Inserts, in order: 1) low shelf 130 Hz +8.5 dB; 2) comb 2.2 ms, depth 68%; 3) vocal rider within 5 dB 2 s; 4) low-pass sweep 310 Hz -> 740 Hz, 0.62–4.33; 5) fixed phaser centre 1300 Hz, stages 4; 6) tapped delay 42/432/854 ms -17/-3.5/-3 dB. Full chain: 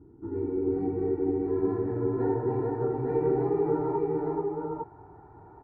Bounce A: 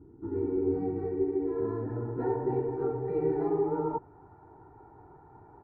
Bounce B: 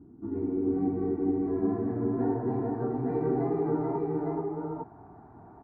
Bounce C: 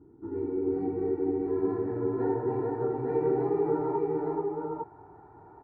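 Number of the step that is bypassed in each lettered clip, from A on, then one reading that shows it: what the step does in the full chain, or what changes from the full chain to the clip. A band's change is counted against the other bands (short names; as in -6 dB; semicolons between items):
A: 6, echo-to-direct 0.0 dB to none; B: 2, 250 Hz band +3.0 dB; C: 1, 125 Hz band -4.0 dB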